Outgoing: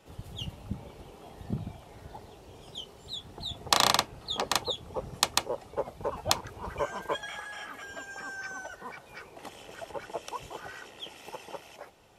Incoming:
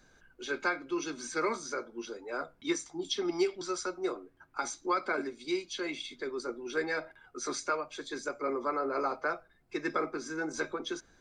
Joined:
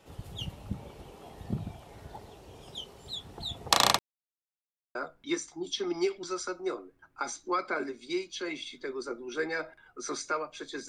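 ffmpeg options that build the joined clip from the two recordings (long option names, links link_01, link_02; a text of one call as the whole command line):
ffmpeg -i cue0.wav -i cue1.wav -filter_complex "[0:a]apad=whole_dur=10.88,atrim=end=10.88,asplit=2[link_01][link_02];[link_01]atrim=end=3.99,asetpts=PTS-STARTPTS,afade=type=out:start_time=3.986:duration=0.004:curve=hsin[link_03];[link_02]atrim=start=3.99:end=4.95,asetpts=PTS-STARTPTS,volume=0[link_04];[1:a]atrim=start=2.33:end=8.26,asetpts=PTS-STARTPTS,afade=type=in:duration=0.004:curve=hsin[link_05];[link_03][link_04][link_05]concat=n=3:v=0:a=1" out.wav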